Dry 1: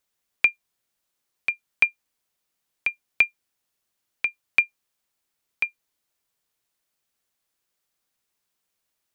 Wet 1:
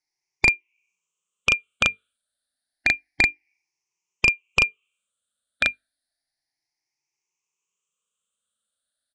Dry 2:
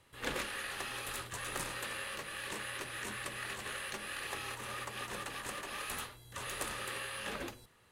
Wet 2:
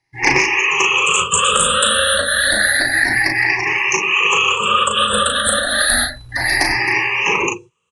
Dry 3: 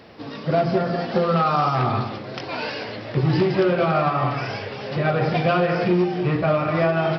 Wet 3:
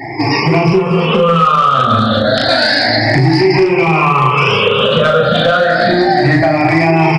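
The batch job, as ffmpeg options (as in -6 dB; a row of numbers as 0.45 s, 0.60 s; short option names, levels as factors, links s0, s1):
-filter_complex "[0:a]afftfilt=real='re*pow(10,20/40*sin(2*PI*(0.75*log(max(b,1)*sr/1024/100)/log(2)-(0.3)*(pts-256)/sr)))':imag='im*pow(10,20/40*sin(2*PI*(0.75*log(max(b,1)*sr/1024/100)/log(2)-(0.3)*(pts-256)/sr)))':win_size=1024:overlap=0.75,bandreject=f=50:t=h:w=6,bandreject=f=100:t=h:w=6,bandreject=f=150:t=h:w=6,bandreject=f=200:t=h:w=6,bandreject=f=250:t=h:w=6,bandreject=f=300:t=h:w=6,bandreject=f=350:t=h:w=6,bandreject=f=400:t=h:w=6,bandreject=f=450:t=h:w=6,afftdn=nr=31:nf=-43,highshelf=f=2100:g=6.5,acrossover=split=180[s0][s1];[s0]acompressor=threshold=0.0708:ratio=4[s2];[s2][s1]amix=inputs=2:normalize=0,acrossover=split=100[s3][s4];[s3]acrusher=bits=3:mode=log:mix=0:aa=0.000001[s5];[s5][s4]amix=inputs=2:normalize=0,acompressor=threshold=0.0447:ratio=6,aeval=exprs='clip(val(0),-1,0.0708)':c=same,asplit=2[s6][s7];[s7]adelay=37,volume=0.562[s8];[s6][s8]amix=inputs=2:normalize=0,aresample=22050,aresample=44100,alimiter=level_in=9.44:limit=0.891:release=50:level=0:latency=1,volume=0.891"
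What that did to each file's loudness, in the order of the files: +3.0 LU, +25.5 LU, +11.0 LU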